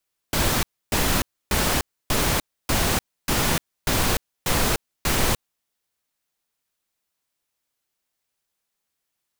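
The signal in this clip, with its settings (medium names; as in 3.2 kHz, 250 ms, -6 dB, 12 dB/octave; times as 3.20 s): noise bursts pink, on 0.30 s, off 0.29 s, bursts 9, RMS -21 dBFS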